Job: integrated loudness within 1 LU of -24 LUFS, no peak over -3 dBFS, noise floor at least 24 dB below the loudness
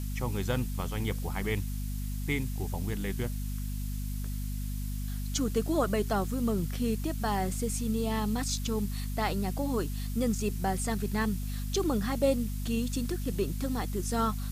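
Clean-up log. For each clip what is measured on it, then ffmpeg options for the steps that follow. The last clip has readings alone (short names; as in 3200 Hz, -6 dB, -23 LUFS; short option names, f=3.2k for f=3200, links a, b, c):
hum 50 Hz; harmonics up to 250 Hz; hum level -32 dBFS; noise floor -34 dBFS; noise floor target -56 dBFS; loudness -32.0 LUFS; peak -13.5 dBFS; loudness target -24.0 LUFS
-> -af "bandreject=f=50:t=h:w=4,bandreject=f=100:t=h:w=4,bandreject=f=150:t=h:w=4,bandreject=f=200:t=h:w=4,bandreject=f=250:t=h:w=4"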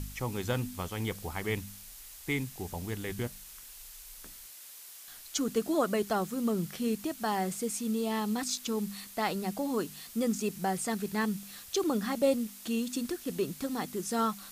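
hum none; noise floor -49 dBFS; noise floor target -57 dBFS
-> -af "afftdn=nr=8:nf=-49"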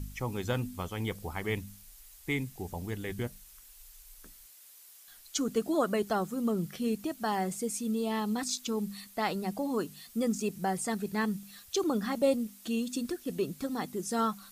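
noise floor -55 dBFS; noise floor target -57 dBFS
-> -af "afftdn=nr=6:nf=-55"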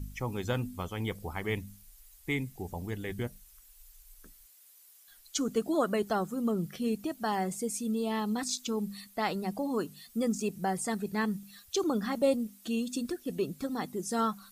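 noise floor -58 dBFS; loudness -33.0 LUFS; peak -15.0 dBFS; loudness target -24.0 LUFS
-> -af "volume=9dB"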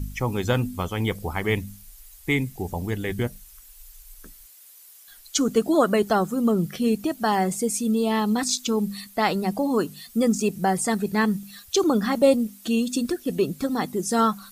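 loudness -24.0 LUFS; peak -6.0 dBFS; noise floor -49 dBFS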